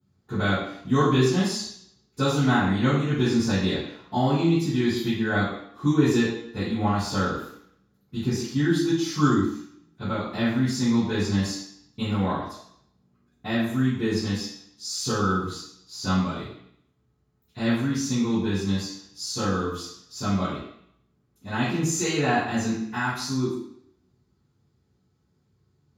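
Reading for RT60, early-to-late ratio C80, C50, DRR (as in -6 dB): 0.65 s, 4.5 dB, 0.5 dB, -19.5 dB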